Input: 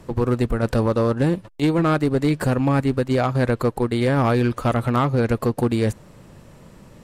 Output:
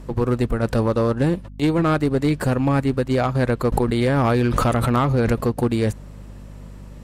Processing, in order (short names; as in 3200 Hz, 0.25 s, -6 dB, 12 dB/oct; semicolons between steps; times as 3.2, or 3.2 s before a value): hum 50 Hz, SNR 18 dB; 3.72–5.43 backwards sustainer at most 25 dB/s